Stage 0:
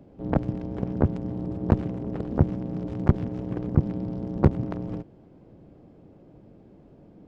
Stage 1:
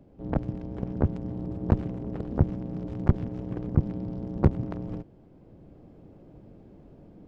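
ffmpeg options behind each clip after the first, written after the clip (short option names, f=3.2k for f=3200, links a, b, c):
-af "lowshelf=f=60:g=8.5,dynaudnorm=f=660:g=3:m=5dB,volume=-5dB"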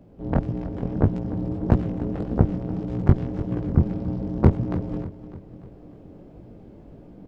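-af "flanger=delay=16.5:depth=7.5:speed=1.7,aecho=1:1:298|596|894|1192|1490:0.188|0.0979|0.0509|0.0265|0.0138,volume=8dB"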